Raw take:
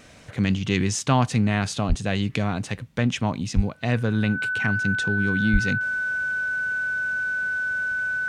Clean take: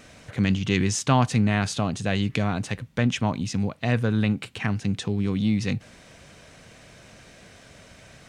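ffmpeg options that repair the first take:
-filter_complex "[0:a]bandreject=f=1.5k:w=30,asplit=3[a][b][c];[a]afade=t=out:st=1.88:d=0.02[d];[b]highpass=f=140:w=0.5412,highpass=f=140:w=1.3066,afade=t=in:st=1.88:d=0.02,afade=t=out:st=2:d=0.02[e];[c]afade=t=in:st=2:d=0.02[f];[d][e][f]amix=inputs=3:normalize=0,asplit=3[g][h][i];[g]afade=t=out:st=3.55:d=0.02[j];[h]highpass=f=140:w=0.5412,highpass=f=140:w=1.3066,afade=t=in:st=3.55:d=0.02,afade=t=out:st=3.67:d=0.02[k];[i]afade=t=in:st=3.67:d=0.02[l];[j][k][l]amix=inputs=3:normalize=0,asplit=3[m][n][o];[m]afade=t=out:st=5.52:d=0.02[p];[n]highpass=f=140:w=0.5412,highpass=f=140:w=1.3066,afade=t=in:st=5.52:d=0.02,afade=t=out:st=5.64:d=0.02[q];[o]afade=t=in:st=5.64:d=0.02[r];[p][q][r]amix=inputs=3:normalize=0"

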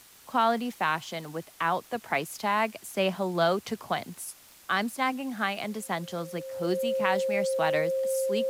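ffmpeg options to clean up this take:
-af "adeclick=t=4,bandreject=f=530:w=30,afftdn=nr=20:nf=-54"

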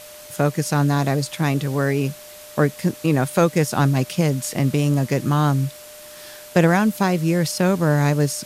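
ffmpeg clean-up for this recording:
-af "bandreject=f=600:w=30,afwtdn=0.0089"

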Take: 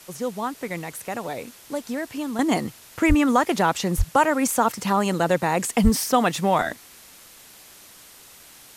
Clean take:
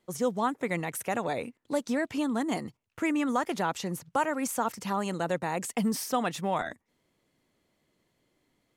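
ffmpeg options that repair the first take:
-filter_complex "[0:a]asplit=3[a][b][c];[a]afade=t=out:st=3.08:d=0.02[d];[b]highpass=f=140:w=0.5412,highpass=f=140:w=1.3066,afade=t=in:st=3.08:d=0.02,afade=t=out:st=3.2:d=0.02[e];[c]afade=t=in:st=3.2:d=0.02[f];[d][e][f]amix=inputs=3:normalize=0,asplit=3[g][h][i];[g]afade=t=out:st=3.97:d=0.02[j];[h]highpass=f=140:w=0.5412,highpass=f=140:w=1.3066,afade=t=in:st=3.97:d=0.02,afade=t=out:st=4.09:d=0.02[k];[i]afade=t=in:st=4.09:d=0.02[l];[j][k][l]amix=inputs=3:normalize=0,asplit=3[m][n][o];[m]afade=t=out:st=5.83:d=0.02[p];[n]highpass=f=140:w=0.5412,highpass=f=140:w=1.3066,afade=t=in:st=5.83:d=0.02,afade=t=out:st=5.95:d=0.02[q];[o]afade=t=in:st=5.95:d=0.02[r];[p][q][r]amix=inputs=3:normalize=0,afwtdn=0.005,asetnsamples=n=441:p=0,asendcmd='2.39 volume volume -9dB',volume=0dB"

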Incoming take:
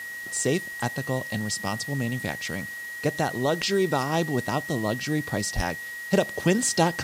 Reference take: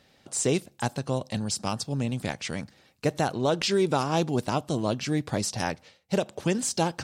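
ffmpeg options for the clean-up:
-filter_complex "[0:a]bandreject=f=1.9k:w=30,asplit=3[a][b][c];[a]afade=t=out:st=5.55:d=0.02[d];[b]highpass=f=140:w=0.5412,highpass=f=140:w=1.3066,afade=t=in:st=5.55:d=0.02,afade=t=out:st=5.67:d=0.02[e];[c]afade=t=in:st=5.67:d=0.02[f];[d][e][f]amix=inputs=3:normalize=0,afwtdn=0.005,asetnsamples=n=441:p=0,asendcmd='6.13 volume volume -4dB',volume=0dB"

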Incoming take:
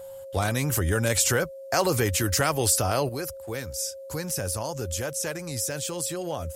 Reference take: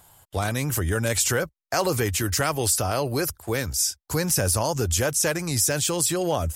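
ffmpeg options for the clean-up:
-af "bandreject=f=540:w=30,agate=range=-21dB:threshold=-33dB,asetnsamples=n=441:p=0,asendcmd='3.09 volume volume 7.5dB',volume=0dB"

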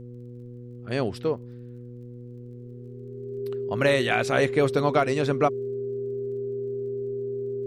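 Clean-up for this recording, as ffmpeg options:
-af "adeclick=t=4,bandreject=f=121.7:t=h:w=4,bandreject=f=243.4:t=h:w=4,bandreject=f=365.1:t=h:w=4,bandreject=f=486.8:t=h:w=4,bandreject=f=400:w=30,agate=range=-21dB:threshold=-33dB"

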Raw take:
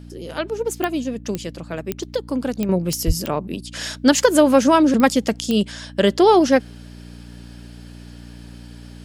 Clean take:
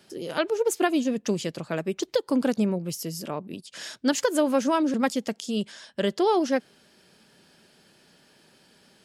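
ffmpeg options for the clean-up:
-filter_complex "[0:a]adeclick=t=4,bandreject=f=59:t=h:w=4,bandreject=f=118:t=h:w=4,bandreject=f=177:t=h:w=4,bandreject=f=236:t=h:w=4,bandreject=f=295:t=h:w=4,asplit=3[a][b][c];[a]afade=t=out:st=3.06:d=0.02[d];[b]highpass=f=140:w=0.5412,highpass=f=140:w=1.3066,afade=t=in:st=3.06:d=0.02,afade=t=out:st=3.18:d=0.02[e];[c]afade=t=in:st=3.18:d=0.02[f];[d][e][f]amix=inputs=3:normalize=0,asetnsamples=n=441:p=0,asendcmd='2.69 volume volume -9dB',volume=0dB"

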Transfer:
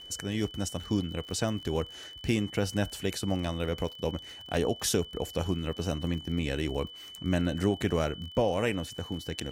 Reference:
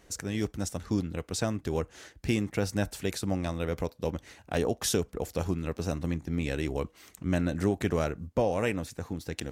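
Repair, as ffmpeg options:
-af "adeclick=t=4,bandreject=f=3k:w=30"

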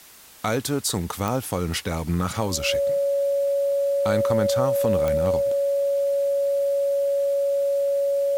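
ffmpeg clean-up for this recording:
-af "adeclick=t=4,bandreject=f=560:w=30,afftdn=nr=30:nf=-32"

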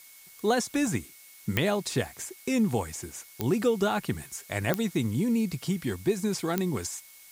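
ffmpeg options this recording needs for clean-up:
-af "adeclick=t=4,bandreject=f=2.2k:w=30,afftdn=nr=22:nf=-52"

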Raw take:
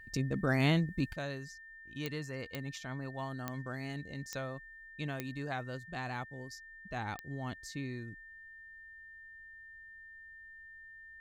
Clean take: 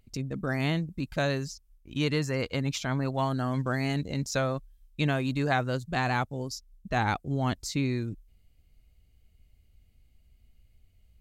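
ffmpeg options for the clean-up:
-af "adeclick=t=4,bandreject=f=1.8k:w=30,asetnsamples=n=441:p=0,asendcmd='1.13 volume volume 12dB',volume=0dB"

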